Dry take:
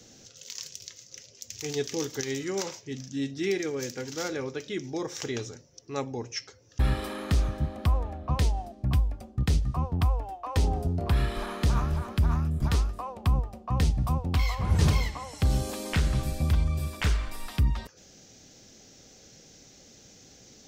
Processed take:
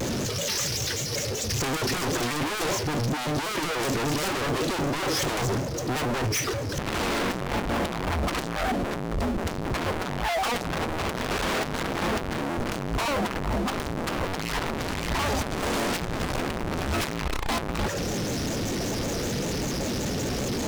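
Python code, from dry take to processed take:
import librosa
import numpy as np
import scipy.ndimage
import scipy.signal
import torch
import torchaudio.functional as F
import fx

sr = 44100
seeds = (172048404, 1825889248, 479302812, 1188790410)

p1 = fx.spec_quant(x, sr, step_db=15)
p2 = scipy.signal.sosfilt(scipy.signal.butter(2, 7000.0, 'lowpass', fs=sr, output='sos'), p1)
p3 = fx.high_shelf(p2, sr, hz=2600.0, db=-12.0)
p4 = fx.over_compress(p3, sr, threshold_db=-29.0, ratio=-1.0)
p5 = p3 + (p4 * librosa.db_to_amplitude(2.0))
p6 = fx.power_curve(p5, sr, exponent=0.35)
p7 = 10.0 ** (-19.0 / 20.0) * (np.abs((p6 / 10.0 ** (-19.0 / 20.0) + 3.0) % 4.0 - 2.0) - 1.0)
p8 = fx.vibrato_shape(p7, sr, shape='square', rate_hz=5.2, depth_cents=160.0)
y = p8 * librosa.db_to_amplitude(-4.0)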